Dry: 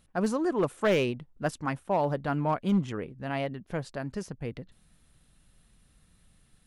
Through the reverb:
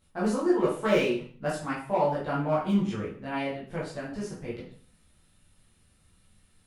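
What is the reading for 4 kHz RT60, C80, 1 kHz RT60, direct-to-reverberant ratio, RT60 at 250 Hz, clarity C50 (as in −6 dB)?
0.45 s, 10.0 dB, 0.45 s, −8.5 dB, 0.50 s, 4.0 dB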